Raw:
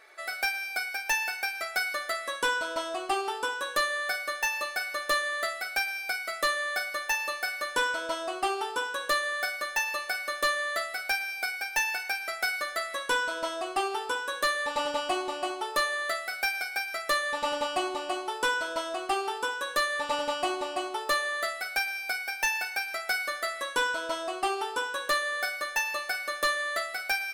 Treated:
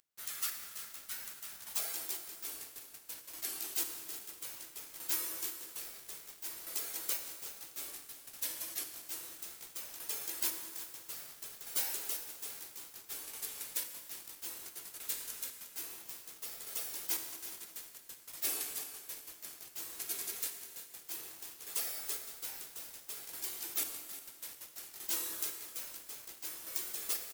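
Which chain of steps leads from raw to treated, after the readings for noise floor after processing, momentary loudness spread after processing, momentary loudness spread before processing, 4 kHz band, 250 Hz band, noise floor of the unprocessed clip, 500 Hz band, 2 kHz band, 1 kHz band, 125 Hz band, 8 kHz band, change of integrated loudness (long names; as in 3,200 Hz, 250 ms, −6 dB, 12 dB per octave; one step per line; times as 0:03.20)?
−56 dBFS, 11 LU, 4 LU, −12.0 dB, −16.0 dB, −40 dBFS, −23.5 dB, −24.5 dB, −25.5 dB, can't be measured, −1.0 dB, −9.5 dB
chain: RIAA equalisation recording
mains-hum notches 60/120/180/240/300/360 Hz
gate on every frequency bin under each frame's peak −30 dB weak
high-shelf EQ 5,300 Hz +12 dB
square-wave tremolo 0.6 Hz, depth 65%, duty 30%
high-pass filter sweep 1,400 Hz → 340 Hz, 0:01.48–0:02.01
bit reduction 8 bits
on a send: repeating echo 358 ms, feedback 35%, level −13.5 dB
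on the sum: dense smooth reverb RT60 2 s, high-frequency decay 0.8×, DRR 6.5 dB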